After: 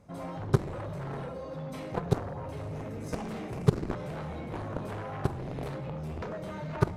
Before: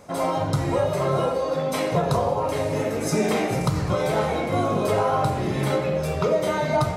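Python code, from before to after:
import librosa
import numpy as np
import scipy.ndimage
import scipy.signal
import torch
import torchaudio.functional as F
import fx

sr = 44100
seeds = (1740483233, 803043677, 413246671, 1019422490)

y = fx.bass_treble(x, sr, bass_db=13, treble_db=-4)
y = fx.cheby_harmonics(y, sr, harmonics=(3, 5, 7), levels_db=(-7, -31, -33), full_scale_db=-1.5)
y = F.gain(torch.from_numpy(y), -6.5).numpy()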